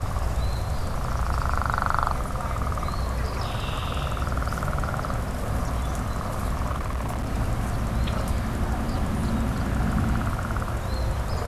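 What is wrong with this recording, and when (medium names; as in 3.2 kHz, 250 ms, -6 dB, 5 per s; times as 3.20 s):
6.71–7.29 s: clipped -24 dBFS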